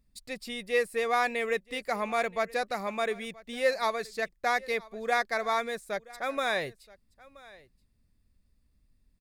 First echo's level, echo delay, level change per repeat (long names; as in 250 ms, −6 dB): −22.0 dB, 976 ms, repeats not evenly spaced